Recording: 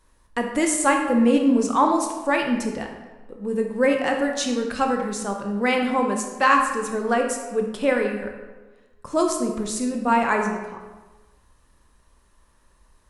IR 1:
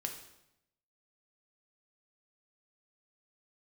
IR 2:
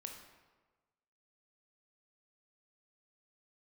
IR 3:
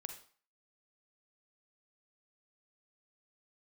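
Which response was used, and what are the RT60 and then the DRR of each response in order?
2; 0.85, 1.3, 0.45 seconds; 2.5, 2.5, 6.0 decibels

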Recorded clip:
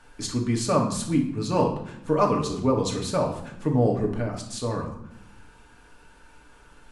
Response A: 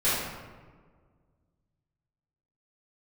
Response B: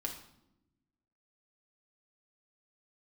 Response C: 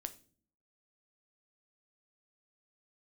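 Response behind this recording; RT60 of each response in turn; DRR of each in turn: B; 1.6, 0.85, 0.45 seconds; −13.5, 0.5, 9.0 decibels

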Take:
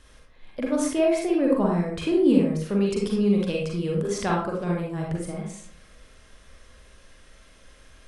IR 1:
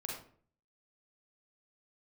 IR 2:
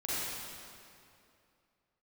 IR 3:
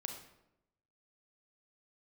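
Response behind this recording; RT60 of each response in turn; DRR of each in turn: 1; 0.50, 2.6, 0.85 seconds; −2.0, −10.0, 3.5 decibels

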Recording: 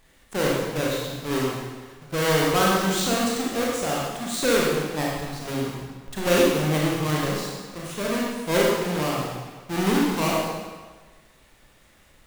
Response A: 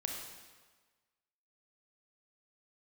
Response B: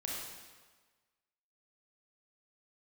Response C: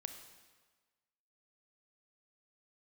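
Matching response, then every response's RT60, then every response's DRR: B; 1.4, 1.4, 1.4 seconds; 0.5, −4.0, 6.5 decibels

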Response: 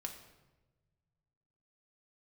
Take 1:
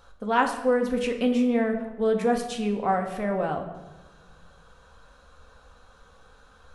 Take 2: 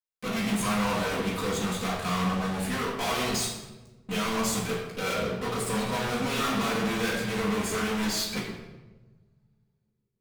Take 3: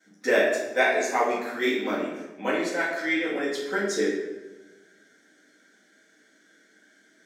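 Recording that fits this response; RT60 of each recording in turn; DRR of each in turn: 1; 1.2, 1.1, 1.1 seconds; 3.0, −6.5, −15.0 decibels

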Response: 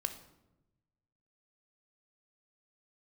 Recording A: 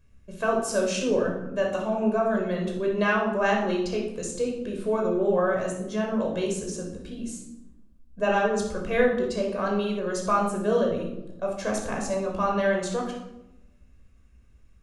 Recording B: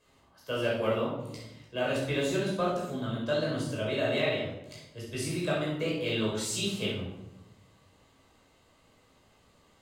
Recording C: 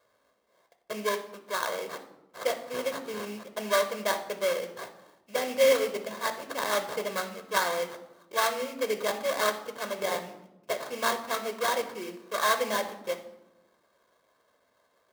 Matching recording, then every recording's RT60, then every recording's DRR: C; 0.95, 0.95, 0.95 seconds; −1.0, −6.0, 8.0 decibels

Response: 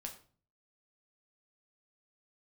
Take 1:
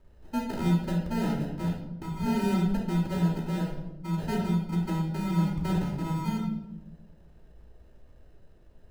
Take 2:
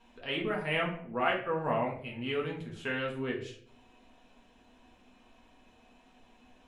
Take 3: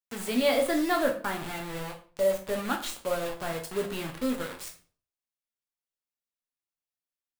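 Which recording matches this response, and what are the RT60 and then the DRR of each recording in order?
3; 0.90, 0.60, 0.45 seconds; −6.0, −2.5, 2.0 decibels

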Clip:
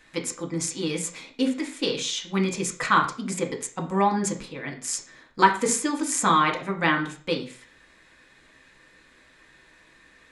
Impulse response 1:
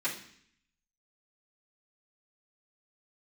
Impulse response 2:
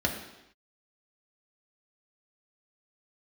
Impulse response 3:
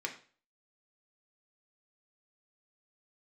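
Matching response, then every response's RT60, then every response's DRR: 3; 0.60 s, non-exponential decay, 0.40 s; −12.0, 0.0, 1.0 decibels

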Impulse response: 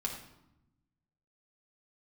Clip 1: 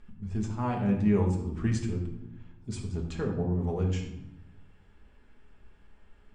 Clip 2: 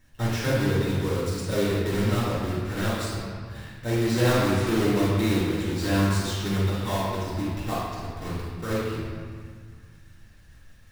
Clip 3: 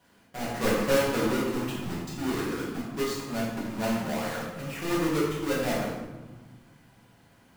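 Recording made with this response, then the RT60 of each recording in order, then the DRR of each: 1; 0.85, 1.9, 1.3 seconds; −1.0, −9.5, −8.0 decibels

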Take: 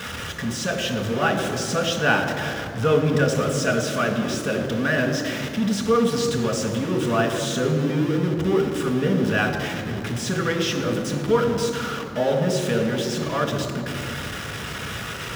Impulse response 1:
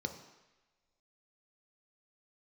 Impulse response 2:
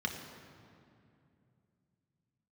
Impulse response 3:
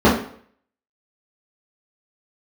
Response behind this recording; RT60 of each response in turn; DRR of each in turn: 2; non-exponential decay, 2.6 s, 0.55 s; 5.0, 1.5, −9.0 decibels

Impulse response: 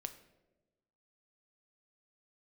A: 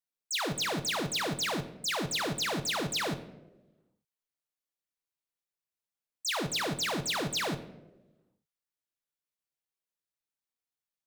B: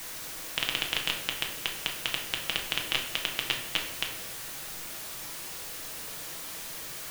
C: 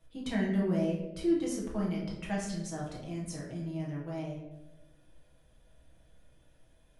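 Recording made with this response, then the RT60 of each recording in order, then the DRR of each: A; 1.1, 1.1, 1.1 seconds; 8.0, 0.5, −5.5 decibels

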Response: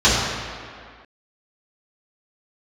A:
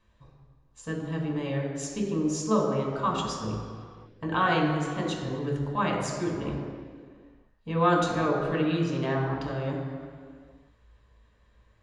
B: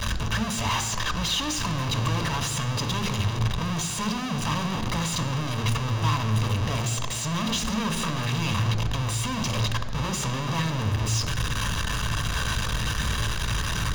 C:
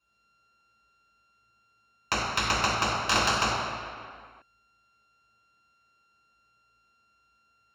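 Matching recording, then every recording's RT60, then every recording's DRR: C; 2.1, 2.1, 2.1 seconds; −1.0, 8.5, −11.0 decibels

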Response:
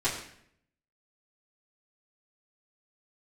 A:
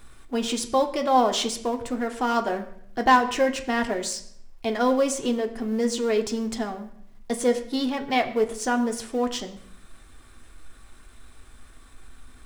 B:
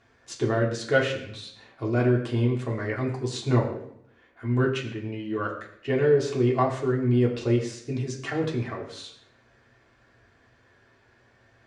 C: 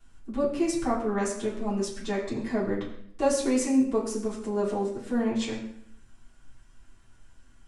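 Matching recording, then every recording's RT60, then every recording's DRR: C; 0.65, 0.65, 0.65 seconds; 5.0, −3.5, −11.5 decibels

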